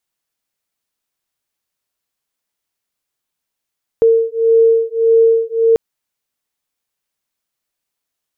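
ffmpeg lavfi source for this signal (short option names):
-f lavfi -i "aevalsrc='0.251*(sin(2*PI*454*t)+sin(2*PI*455.7*t))':d=1.74:s=44100"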